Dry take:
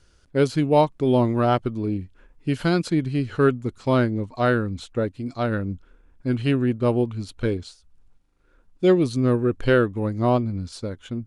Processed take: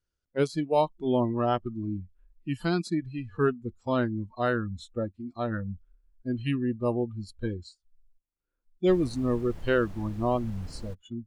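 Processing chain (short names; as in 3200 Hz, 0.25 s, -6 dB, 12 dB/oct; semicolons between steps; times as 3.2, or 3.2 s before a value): spectral noise reduction 21 dB; 8.86–10.93 added noise brown -34 dBFS; gain -5.5 dB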